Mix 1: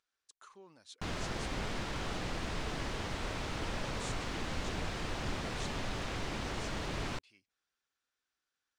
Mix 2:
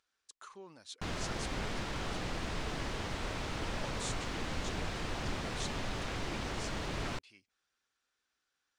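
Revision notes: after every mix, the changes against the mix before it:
speech +5.0 dB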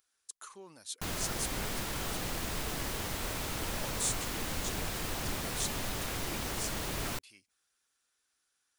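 master: remove air absorption 110 m

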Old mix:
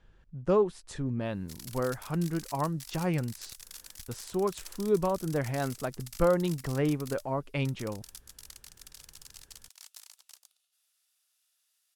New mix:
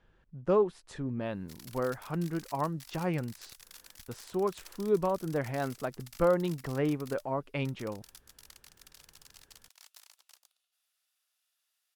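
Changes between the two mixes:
speech: add low shelf 130 Hz -8.5 dB; master: add bell 8500 Hz -7.5 dB 2 oct

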